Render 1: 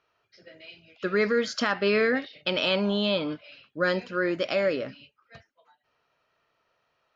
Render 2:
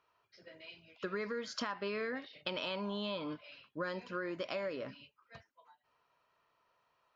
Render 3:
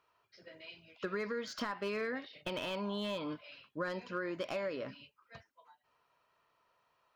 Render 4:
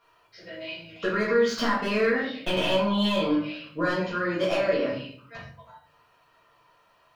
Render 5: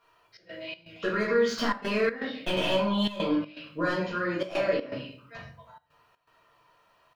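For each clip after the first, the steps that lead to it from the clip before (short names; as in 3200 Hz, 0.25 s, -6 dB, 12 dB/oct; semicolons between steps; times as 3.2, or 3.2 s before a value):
bell 1000 Hz +11 dB 0.28 oct; compressor 6:1, threshold -30 dBFS, peak gain reduction 12.5 dB; gain -5.5 dB
slew limiter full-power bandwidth 36 Hz; gain +1 dB
shoebox room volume 69 m³, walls mixed, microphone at 1.7 m; gain +5 dB
step gate "xxx.xx.xxxx" 122 bpm -12 dB; gain -2 dB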